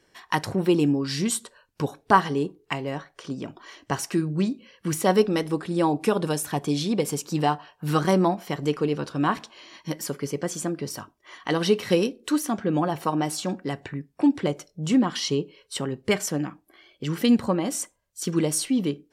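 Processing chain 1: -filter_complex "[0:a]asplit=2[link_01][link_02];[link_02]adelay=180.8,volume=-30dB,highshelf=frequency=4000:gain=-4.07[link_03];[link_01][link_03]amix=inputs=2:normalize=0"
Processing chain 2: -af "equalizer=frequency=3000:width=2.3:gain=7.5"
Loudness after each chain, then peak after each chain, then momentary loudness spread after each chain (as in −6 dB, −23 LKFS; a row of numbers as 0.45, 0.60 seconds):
−25.5, −25.0 LKFS; −3.0, −2.5 dBFS; 12, 12 LU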